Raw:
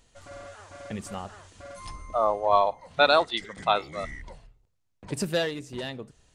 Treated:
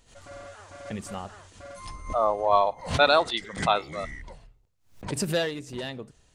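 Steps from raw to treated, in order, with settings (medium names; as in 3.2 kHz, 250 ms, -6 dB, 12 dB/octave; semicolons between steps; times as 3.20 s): swell ahead of each attack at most 130 dB/s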